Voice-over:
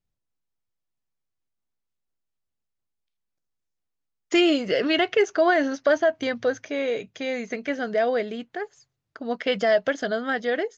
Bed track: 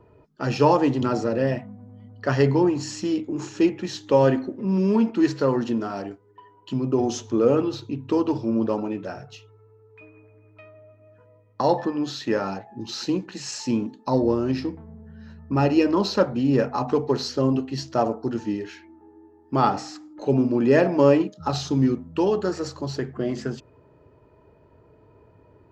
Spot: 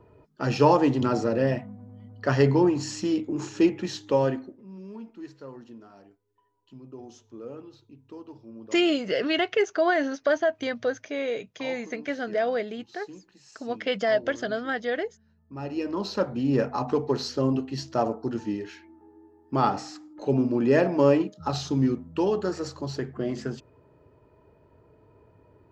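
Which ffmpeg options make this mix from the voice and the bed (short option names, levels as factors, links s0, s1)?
-filter_complex "[0:a]adelay=4400,volume=0.708[s0];[1:a]volume=7.08,afade=t=out:st=3.86:d=0.78:silence=0.1,afade=t=in:st=15.46:d=1.11:silence=0.125893[s1];[s0][s1]amix=inputs=2:normalize=0"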